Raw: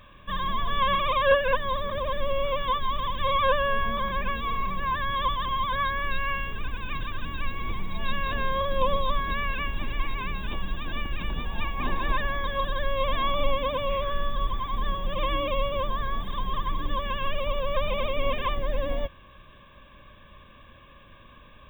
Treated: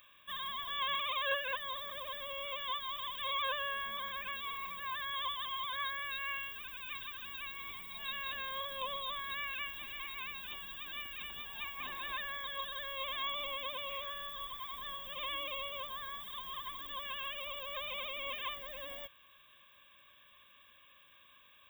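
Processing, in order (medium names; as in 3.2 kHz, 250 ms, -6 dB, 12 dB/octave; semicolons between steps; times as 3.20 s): high-pass 62 Hz 6 dB/octave; pre-emphasis filter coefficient 0.97; trim +3 dB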